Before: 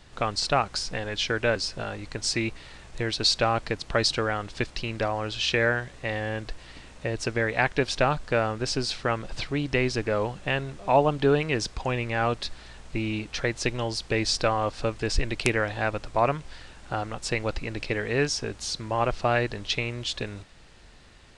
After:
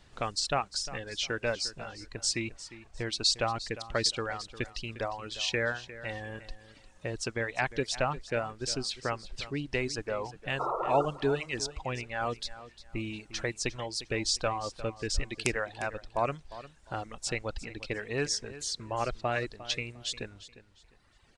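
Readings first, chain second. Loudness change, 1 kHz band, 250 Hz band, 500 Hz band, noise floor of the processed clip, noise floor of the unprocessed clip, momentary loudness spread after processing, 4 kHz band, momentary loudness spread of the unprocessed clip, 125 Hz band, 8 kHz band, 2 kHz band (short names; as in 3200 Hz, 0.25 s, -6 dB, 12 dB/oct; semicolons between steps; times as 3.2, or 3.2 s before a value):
-6.0 dB, -6.0 dB, -8.0 dB, -7.0 dB, -60 dBFS, -49 dBFS, 11 LU, -4.0 dB, 10 LU, -8.5 dB, -1.0 dB, -6.5 dB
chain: dynamic EQ 7500 Hz, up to +7 dB, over -48 dBFS, Q 1.2; painted sound noise, 10.59–11.06, 330–1400 Hz -24 dBFS; reverb removal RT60 1.9 s; on a send: feedback echo 0.353 s, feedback 26%, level -15.5 dB; on the sum: gain -6 dB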